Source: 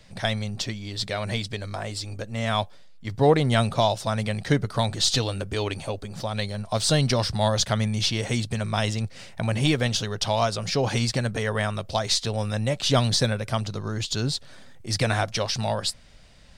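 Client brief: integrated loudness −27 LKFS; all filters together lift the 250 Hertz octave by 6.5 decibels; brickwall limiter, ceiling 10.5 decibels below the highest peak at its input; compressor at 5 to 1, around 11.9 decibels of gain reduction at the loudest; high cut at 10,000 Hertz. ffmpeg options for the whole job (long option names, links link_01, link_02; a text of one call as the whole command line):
ffmpeg -i in.wav -af "lowpass=10000,equalizer=frequency=250:width_type=o:gain=8,acompressor=threshold=-25dB:ratio=5,volume=5dB,alimiter=limit=-16.5dB:level=0:latency=1" out.wav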